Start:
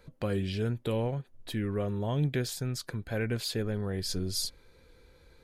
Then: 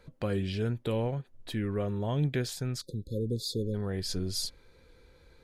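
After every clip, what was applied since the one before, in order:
time-frequency box erased 0:02.81–0:03.75, 550–3,400 Hz
high-shelf EQ 12,000 Hz −8 dB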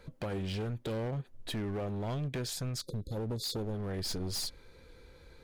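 downward compressor 5 to 1, threshold −32 dBFS, peak gain reduction 8 dB
gain into a clipping stage and back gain 35 dB
level +3 dB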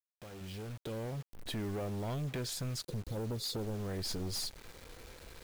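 fade in at the beginning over 1.69 s
in parallel at 0 dB: downward compressor 6 to 1, threshold −44 dBFS, peak gain reduction 10 dB
on the sum: bit-depth reduction 8 bits, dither none
level −4 dB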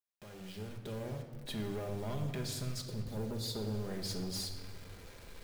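rectangular room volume 1,900 cubic metres, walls mixed, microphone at 1.3 metres
level −3 dB

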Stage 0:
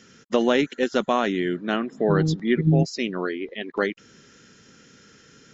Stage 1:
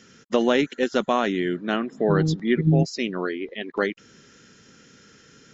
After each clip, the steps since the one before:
no processing that can be heard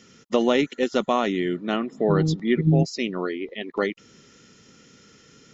notch filter 1,600 Hz, Q 5.5

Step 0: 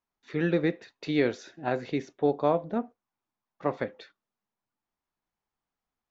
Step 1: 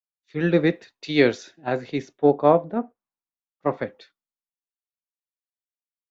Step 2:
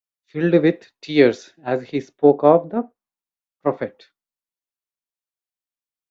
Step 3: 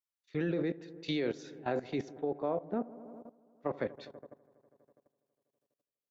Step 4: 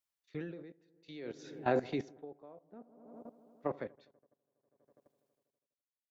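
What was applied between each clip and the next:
multiband upward and downward expander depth 100%; level +4.5 dB
dynamic equaliser 400 Hz, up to +5 dB, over −28 dBFS, Q 0.72
downward compressor 16 to 1, threshold −20 dBFS, peak gain reduction 14 dB; delay with a low-pass on its return 82 ms, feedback 80%, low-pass 1,100 Hz, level −19 dB; output level in coarse steps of 17 dB; level +2.5 dB
tremolo with a sine in dB 0.58 Hz, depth 25 dB; level +3.5 dB

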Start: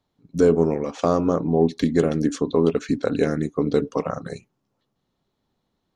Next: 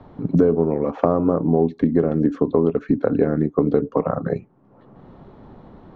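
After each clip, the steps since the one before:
low-pass filter 1,200 Hz 12 dB per octave
multiband upward and downward compressor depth 100%
level +1.5 dB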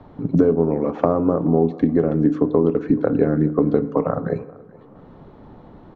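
repeating echo 428 ms, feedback 40%, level −23.5 dB
feedback delay network reverb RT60 1.1 s, low-frequency decay 1×, high-frequency decay 0.55×, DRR 13.5 dB

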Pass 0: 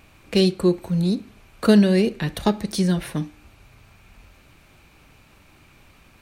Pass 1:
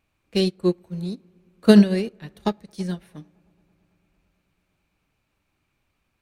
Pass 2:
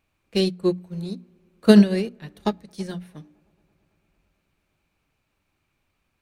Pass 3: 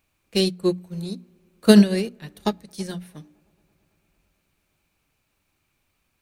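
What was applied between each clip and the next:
delay with a low-pass on its return 111 ms, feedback 84%, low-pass 1,500 Hz, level −20 dB; expander for the loud parts 2.5 to 1, over −27 dBFS; level +3.5 dB
mains-hum notches 60/120/180/240/300 Hz
high-shelf EQ 5,000 Hz +9.5 dB

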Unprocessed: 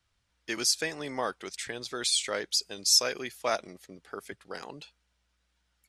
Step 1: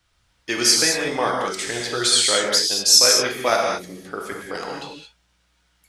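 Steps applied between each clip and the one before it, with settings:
reverb whose tail is shaped and stops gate 250 ms flat, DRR −1 dB
level +8 dB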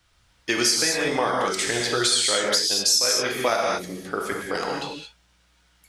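downward compressor 4 to 1, threshold −22 dBFS, peak gain reduction 11.5 dB
level +3 dB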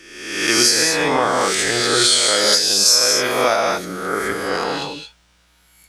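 peak hold with a rise ahead of every peak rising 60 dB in 0.98 s
level +3 dB

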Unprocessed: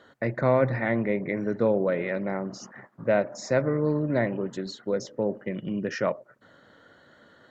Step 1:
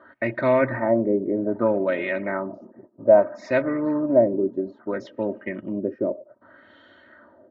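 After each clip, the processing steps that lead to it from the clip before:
high-pass filter 60 Hz
comb filter 3.2 ms, depth 74%
auto-filter low-pass sine 0.62 Hz 390–3,300 Hz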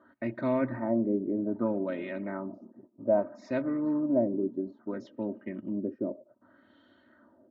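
graphic EQ with 10 bands 250 Hz +7 dB, 500 Hz −4 dB, 2,000 Hz −7 dB
level −8.5 dB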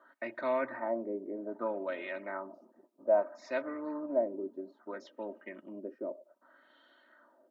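high-pass filter 620 Hz 12 dB per octave
level +2 dB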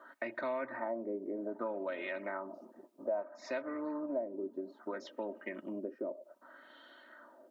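downward compressor 3 to 1, threshold −44 dBFS, peak gain reduction 16.5 dB
level +6.5 dB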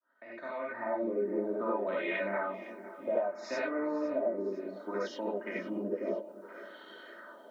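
fade in at the beginning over 1.14 s
echo with a time of its own for lows and highs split 340 Hz, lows 267 ms, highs 509 ms, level −16 dB
reverb whose tail is shaped and stops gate 110 ms rising, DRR −5 dB

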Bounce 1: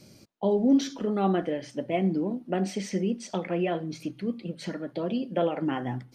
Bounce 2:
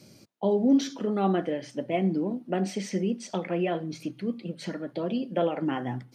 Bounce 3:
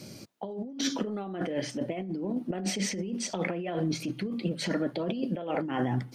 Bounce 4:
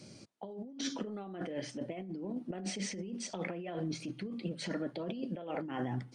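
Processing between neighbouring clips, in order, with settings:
high-pass filter 85 Hz
compressor whose output falls as the input rises −34 dBFS, ratio −1; level +2 dB
downsampling to 22,050 Hz; level −7.5 dB

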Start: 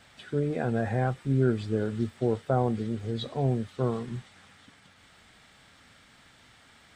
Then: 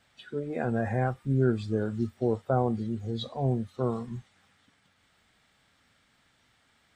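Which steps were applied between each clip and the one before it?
noise reduction from a noise print of the clip's start 10 dB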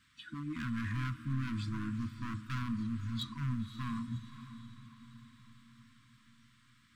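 hard clipping −30.5 dBFS, distortion −5 dB
feedback delay with all-pass diffusion 547 ms, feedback 53%, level −12.5 dB
brick-wall band-stop 330–960 Hz
level −1.5 dB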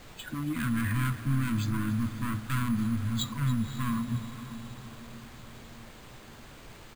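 background noise pink −56 dBFS
single-tap delay 281 ms −14.5 dB
bad sample-rate conversion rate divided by 4×, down filtered, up hold
level +7.5 dB

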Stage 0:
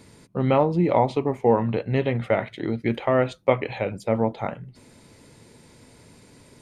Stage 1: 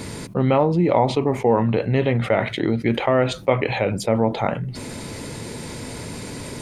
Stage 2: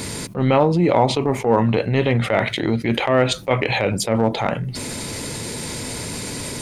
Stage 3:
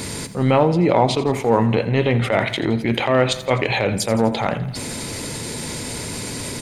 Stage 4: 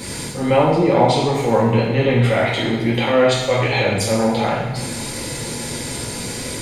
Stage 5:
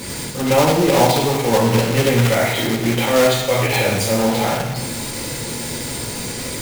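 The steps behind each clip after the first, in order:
envelope flattener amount 50%
high-shelf EQ 2,700 Hz +7.5 dB; transient designer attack −8 dB, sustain −2 dB; level +2.5 dB
repeating echo 84 ms, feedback 58%, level −15 dB
surface crackle 71 per second −41 dBFS; coupled-rooms reverb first 0.85 s, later 2.5 s, DRR −6.5 dB; level −5.5 dB
one scale factor per block 3 bits

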